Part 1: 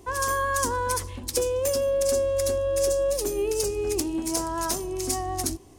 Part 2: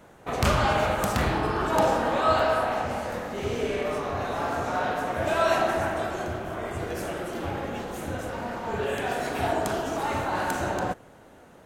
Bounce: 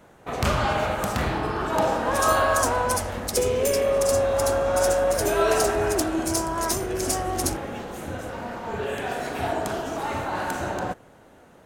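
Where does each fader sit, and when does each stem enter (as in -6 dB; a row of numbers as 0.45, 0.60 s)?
+1.5, -0.5 dB; 2.00, 0.00 s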